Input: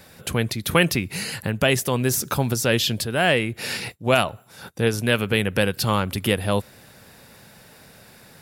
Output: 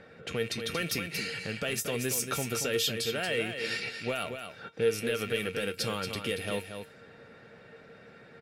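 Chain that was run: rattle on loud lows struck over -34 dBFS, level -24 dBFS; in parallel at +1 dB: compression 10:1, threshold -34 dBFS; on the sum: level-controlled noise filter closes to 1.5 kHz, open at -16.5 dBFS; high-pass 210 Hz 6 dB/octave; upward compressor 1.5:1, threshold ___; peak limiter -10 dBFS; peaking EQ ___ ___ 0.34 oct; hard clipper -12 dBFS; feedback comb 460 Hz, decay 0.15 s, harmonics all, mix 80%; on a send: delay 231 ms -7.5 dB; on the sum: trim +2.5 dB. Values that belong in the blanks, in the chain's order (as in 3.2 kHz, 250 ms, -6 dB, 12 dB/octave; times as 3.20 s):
-36 dBFS, 940 Hz, -13 dB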